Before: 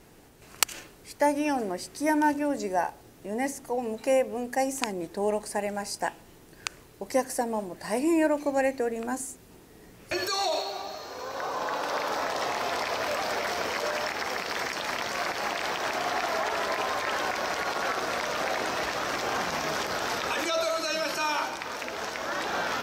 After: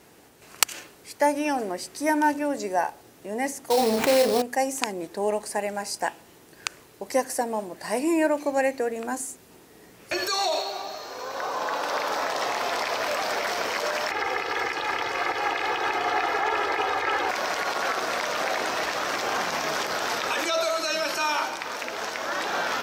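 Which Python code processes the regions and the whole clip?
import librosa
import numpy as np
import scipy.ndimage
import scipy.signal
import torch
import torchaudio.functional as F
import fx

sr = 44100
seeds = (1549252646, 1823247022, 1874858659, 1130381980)

y = fx.chain(x, sr, fx.doubler(ms=31.0, db=-6),
    fx.sample_hold(seeds[0], rate_hz=4800.0, jitter_pct=20),
    fx.env_flatten(amount_pct=70), at=(3.7, 4.42))
y = fx.chain(y, sr, fx.bass_treble(bass_db=3, treble_db=-11),
    fx.comb(ms=2.4, depth=0.79), at=(14.11, 17.29))
y = scipy.signal.sosfilt(scipy.signal.butter(2, 53.0, 'highpass', fs=sr, output='sos'), y)
y = fx.low_shelf(y, sr, hz=200.0, db=-9.0)
y = y * 10.0 ** (3.0 / 20.0)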